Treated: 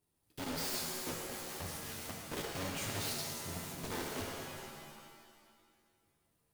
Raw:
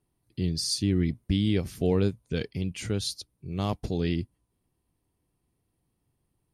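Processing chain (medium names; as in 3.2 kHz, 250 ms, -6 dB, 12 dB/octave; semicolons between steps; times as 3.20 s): block-companded coder 3-bit; treble shelf 5.2 kHz +4 dB; wavefolder -30 dBFS; bass shelf 150 Hz -5.5 dB; pitch-shifted reverb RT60 1.8 s, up +7 st, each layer -2 dB, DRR 0 dB; trim -6 dB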